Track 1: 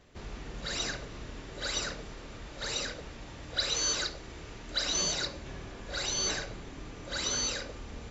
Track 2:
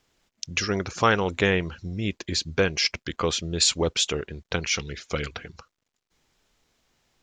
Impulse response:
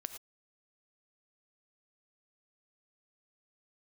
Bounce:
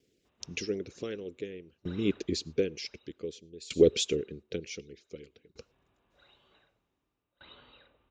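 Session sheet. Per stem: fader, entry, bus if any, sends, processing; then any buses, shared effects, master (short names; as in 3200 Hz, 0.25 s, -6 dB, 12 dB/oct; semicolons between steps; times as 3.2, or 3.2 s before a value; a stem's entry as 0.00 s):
2.83 s -2 dB -> 3.42 s -15 dB, 0.25 s, send -12.5 dB, rippled Chebyshev low-pass 3900 Hz, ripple 6 dB; auto duck -15 dB, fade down 0.85 s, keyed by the second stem
-1.5 dB, 0.00 s, send -15.5 dB, EQ curve 100 Hz 0 dB, 440 Hz +12 dB, 920 Hz -24 dB, 2300 Hz -2 dB; harmonic-percussive split harmonic -8 dB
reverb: on, pre-delay 3 ms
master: HPF 50 Hz; dB-ramp tremolo decaying 0.54 Hz, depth 25 dB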